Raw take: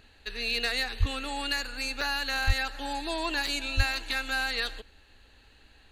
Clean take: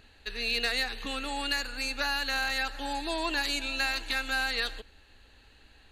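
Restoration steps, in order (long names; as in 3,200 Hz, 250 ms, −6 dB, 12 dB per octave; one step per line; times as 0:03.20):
0:00.99–0:01.11: high-pass filter 140 Hz 24 dB per octave
0:02.46–0:02.58: high-pass filter 140 Hz 24 dB per octave
0:03.76–0:03.88: high-pass filter 140 Hz 24 dB per octave
repair the gap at 0:02.01/0:03.47, 3.5 ms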